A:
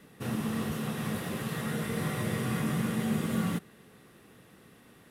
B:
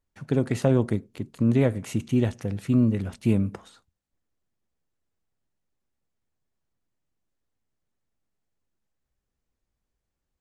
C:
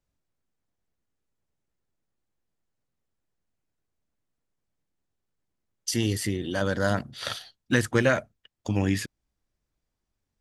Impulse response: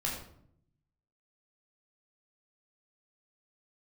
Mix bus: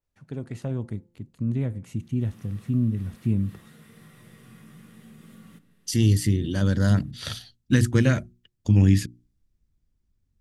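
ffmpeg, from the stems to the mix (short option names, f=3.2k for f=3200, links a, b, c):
-filter_complex "[0:a]highpass=f=790:p=1,acompressor=threshold=-41dB:ratio=6,adelay=2000,volume=-12.5dB,asplit=2[a][b];[b]volume=-15dB[c];[1:a]bandreject=f=172.1:t=h:w=4,bandreject=f=344.2:t=h:w=4,bandreject=f=516.3:t=h:w=4,bandreject=f=688.4:t=h:w=4,bandreject=f=860.5:t=h:w=4,bandreject=f=1.0326k:t=h:w=4,volume=-12dB,asplit=2[d][e];[2:a]bandreject=f=60:t=h:w=6,bandreject=f=120:t=h:w=6,bandreject=f=180:t=h:w=6,bandreject=f=240:t=h:w=6,bandreject=f=300:t=h:w=6,bandreject=f=360:t=h:w=6,adynamicequalizer=threshold=0.00794:dfrequency=2900:dqfactor=0.7:tfrequency=2900:tqfactor=0.7:attack=5:release=100:ratio=0.375:range=2.5:mode=boostabove:tftype=highshelf,volume=-4dB[f];[e]apad=whole_len=313486[g];[a][g]sidechaincompress=threshold=-37dB:ratio=8:attack=16:release=127[h];[3:a]atrim=start_sample=2205[i];[c][i]afir=irnorm=-1:irlink=0[j];[h][d][f][j]amix=inputs=4:normalize=0,asubboost=boost=6.5:cutoff=250"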